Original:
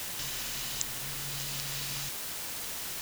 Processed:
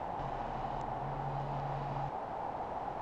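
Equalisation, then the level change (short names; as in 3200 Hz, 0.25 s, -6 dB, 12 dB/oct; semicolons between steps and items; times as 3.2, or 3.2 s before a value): synth low-pass 800 Hz, resonance Q 5.3; +3.5 dB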